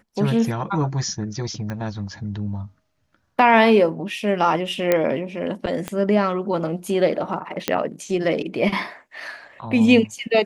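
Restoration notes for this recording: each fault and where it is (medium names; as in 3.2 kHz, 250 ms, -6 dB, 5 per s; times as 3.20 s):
1.70 s: pop -17 dBFS
4.92 s: pop -5 dBFS
5.88 s: pop -12 dBFS
7.68 s: pop -4 dBFS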